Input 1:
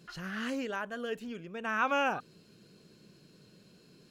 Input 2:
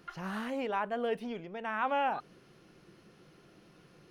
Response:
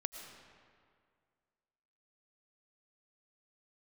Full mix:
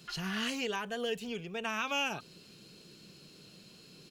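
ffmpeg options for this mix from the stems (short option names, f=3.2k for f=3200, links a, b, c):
-filter_complex "[0:a]highshelf=f=2.1k:t=q:w=1.5:g=7,volume=0.5dB[a];[1:a]volume=-1,adelay=3.9,volume=-5.5dB[b];[a][b]amix=inputs=2:normalize=0,acrossover=split=270|3000[c][d][e];[d]acompressor=threshold=-33dB:ratio=6[f];[c][f][e]amix=inputs=3:normalize=0"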